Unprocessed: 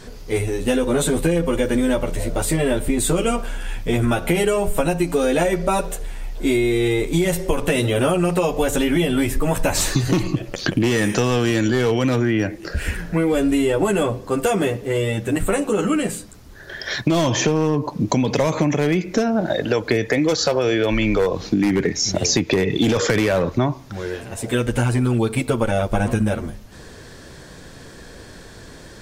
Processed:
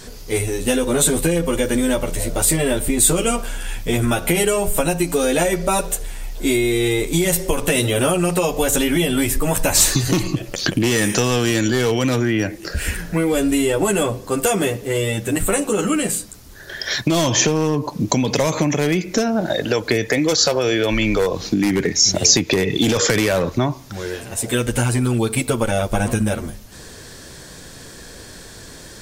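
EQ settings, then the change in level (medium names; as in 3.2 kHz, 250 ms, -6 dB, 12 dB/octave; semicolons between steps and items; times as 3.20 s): treble shelf 4.3 kHz +11 dB; 0.0 dB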